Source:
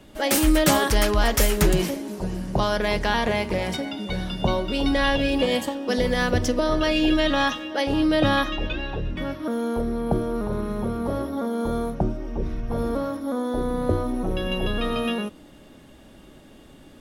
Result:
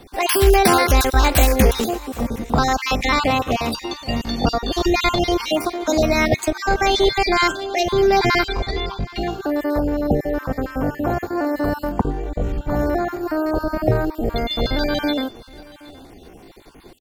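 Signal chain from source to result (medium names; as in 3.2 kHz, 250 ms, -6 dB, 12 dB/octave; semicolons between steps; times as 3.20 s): random holes in the spectrogram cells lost 31%; on a send: delay 774 ms -21.5 dB; on the sum: pitch shift +4 st; loudness maximiser +6.5 dB; trim -1 dB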